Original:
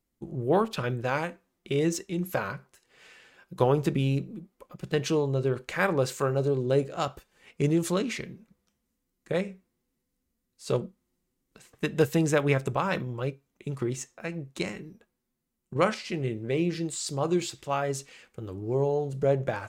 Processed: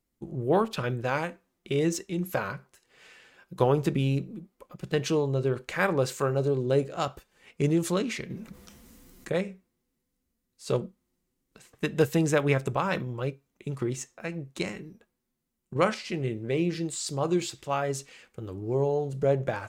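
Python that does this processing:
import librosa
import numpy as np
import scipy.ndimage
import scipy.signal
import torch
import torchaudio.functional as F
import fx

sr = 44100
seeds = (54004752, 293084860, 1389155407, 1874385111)

y = fx.env_flatten(x, sr, amount_pct=50, at=(8.3, 9.33))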